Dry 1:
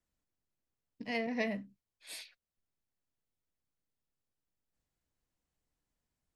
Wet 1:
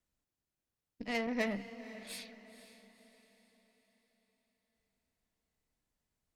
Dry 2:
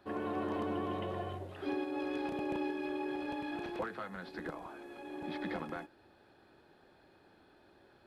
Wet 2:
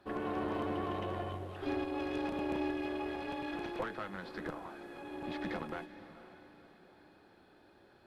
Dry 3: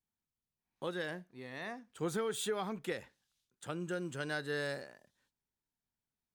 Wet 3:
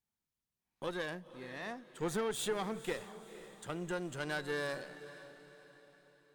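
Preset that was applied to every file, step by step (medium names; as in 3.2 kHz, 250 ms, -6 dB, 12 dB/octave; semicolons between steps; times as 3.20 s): Chebyshev shaper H 8 -23 dB, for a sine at -20.5 dBFS; echo that smears into a reverb 501 ms, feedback 45%, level -14 dB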